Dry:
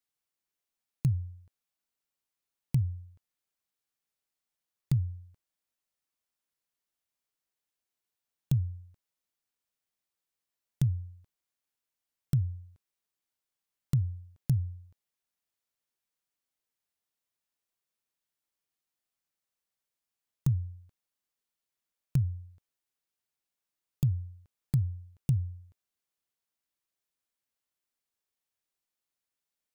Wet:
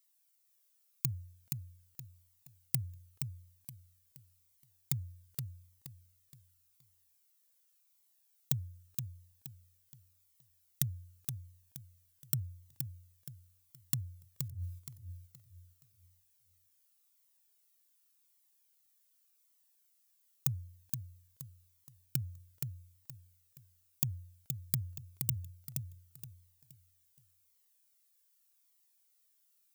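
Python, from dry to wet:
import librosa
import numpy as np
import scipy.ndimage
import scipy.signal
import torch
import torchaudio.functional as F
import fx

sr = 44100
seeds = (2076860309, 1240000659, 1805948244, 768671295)

p1 = fx.riaa(x, sr, side='recording')
p2 = fx.over_compress(p1, sr, threshold_db=-47.0, ratio=-1.0, at=(14.38, 14.78), fade=0.02)
p3 = p2 + fx.echo_feedback(p2, sr, ms=472, feedback_pct=32, wet_db=-5.5, dry=0)
p4 = fx.comb_cascade(p3, sr, direction='falling', hz=0.87)
y = p4 * librosa.db_to_amplitude(4.5)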